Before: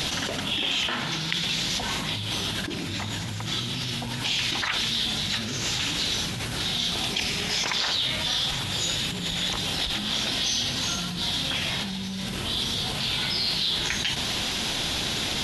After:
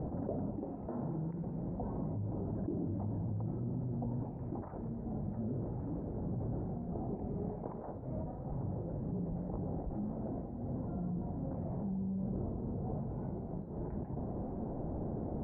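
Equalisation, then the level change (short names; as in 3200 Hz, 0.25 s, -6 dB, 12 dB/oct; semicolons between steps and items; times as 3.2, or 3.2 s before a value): inverse Chebyshev low-pass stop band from 3000 Hz, stop band 70 dB; air absorption 140 m; -3.0 dB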